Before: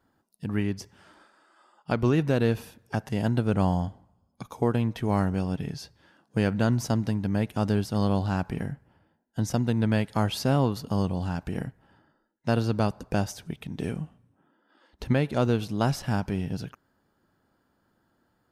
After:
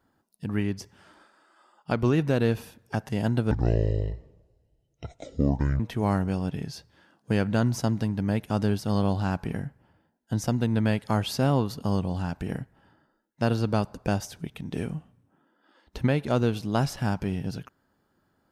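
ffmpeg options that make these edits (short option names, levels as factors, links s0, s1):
-filter_complex "[0:a]asplit=3[s0][s1][s2];[s0]atrim=end=3.514[s3];[s1]atrim=start=3.51:end=4.86,asetpts=PTS-STARTPTS,asetrate=26019,aresample=44100[s4];[s2]atrim=start=4.856[s5];[s3][s4]acrossfade=d=0.004:c1=hsin:c2=hsin[s6];[s6][s5]acrossfade=d=0.004:c1=hsin:c2=hsin"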